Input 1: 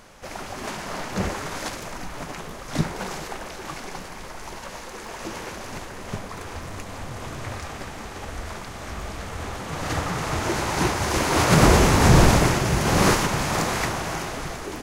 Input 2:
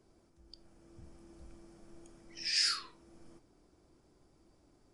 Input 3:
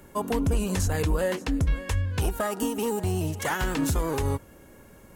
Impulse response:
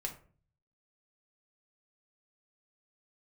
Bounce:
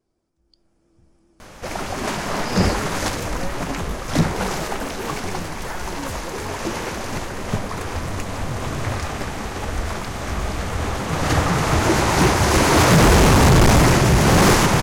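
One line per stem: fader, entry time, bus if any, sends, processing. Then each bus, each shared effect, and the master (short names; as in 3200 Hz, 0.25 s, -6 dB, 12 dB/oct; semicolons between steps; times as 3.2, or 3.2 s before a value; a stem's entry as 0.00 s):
+1.5 dB, 1.40 s, no send, low shelf 420 Hz +3 dB; hard clip -16.5 dBFS, distortion -7 dB
-7.5 dB, 0.00 s, no send, dry
-12.5 dB, 2.20 s, no send, dry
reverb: off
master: AGC gain up to 5 dB; vibrato 7.2 Hz 55 cents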